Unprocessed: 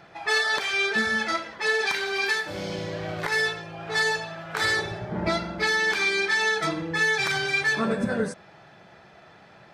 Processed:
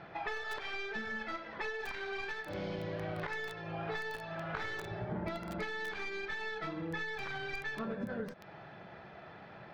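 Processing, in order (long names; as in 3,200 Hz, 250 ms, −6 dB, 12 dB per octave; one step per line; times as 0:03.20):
stylus tracing distortion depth 0.13 ms
downward compressor 20 to 1, threshold −35 dBFS, peak gain reduction 17.5 dB
high-frequency loss of the air 250 metres
feedback echo at a low word length 246 ms, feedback 35%, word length 6 bits, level −5.5 dB
level +1 dB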